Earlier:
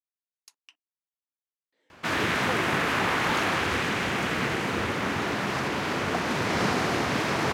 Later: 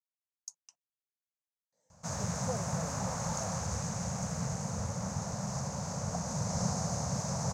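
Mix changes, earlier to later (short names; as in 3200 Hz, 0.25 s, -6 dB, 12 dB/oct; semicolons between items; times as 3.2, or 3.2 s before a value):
speech +7.0 dB; master: add EQ curve 180 Hz 0 dB, 340 Hz -30 dB, 540 Hz -7 dB, 890 Hz -10 dB, 1900 Hz -24 dB, 3200 Hz -28 dB, 6500 Hz +7 dB, 11000 Hz -13 dB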